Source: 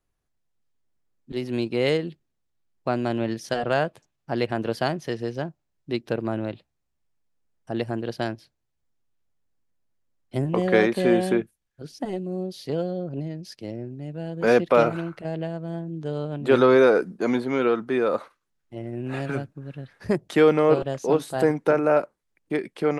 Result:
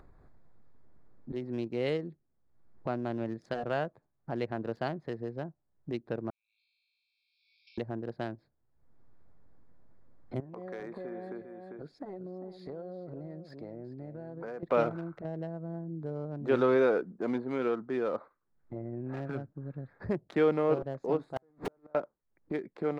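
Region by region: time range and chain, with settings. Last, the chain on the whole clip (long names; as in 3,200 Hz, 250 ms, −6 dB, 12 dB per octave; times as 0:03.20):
0:06.30–0:07.78: downward compressor 2.5 to 1, threshold −49 dBFS + linear-phase brick-wall band-pass 2,200–5,600 Hz + flutter between parallel walls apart 3.2 metres, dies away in 1.2 s
0:10.40–0:14.63: low-shelf EQ 340 Hz −11 dB + downward compressor 2.5 to 1, threshold −39 dBFS + single-tap delay 397 ms −11.5 dB
0:21.36–0:21.95: converter with a step at zero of −22 dBFS + high-shelf EQ 7,100 Hz −4 dB + gate with flip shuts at −14 dBFS, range −42 dB
whole clip: adaptive Wiener filter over 15 samples; high-shelf EQ 5,100 Hz −11.5 dB; upward compression, threshold −24 dBFS; level −8.5 dB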